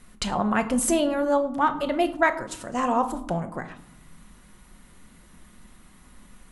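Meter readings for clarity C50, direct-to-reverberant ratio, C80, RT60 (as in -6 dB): 13.5 dB, 7.5 dB, 16.0 dB, 0.80 s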